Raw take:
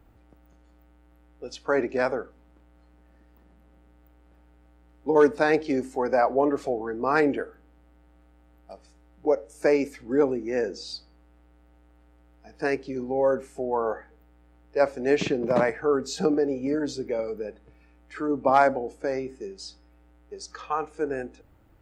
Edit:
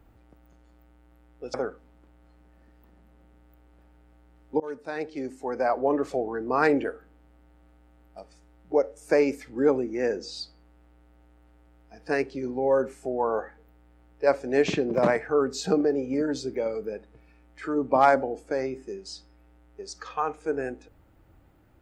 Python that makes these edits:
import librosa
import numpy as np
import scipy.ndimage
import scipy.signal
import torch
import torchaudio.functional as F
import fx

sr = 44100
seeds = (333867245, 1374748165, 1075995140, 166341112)

y = fx.edit(x, sr, fx.cut(start_s=1.54, length_s=0.53),
    fx.fade_in_from(start_s=5.13, length_s=1.62, floor_db=-23.0), tone=tone)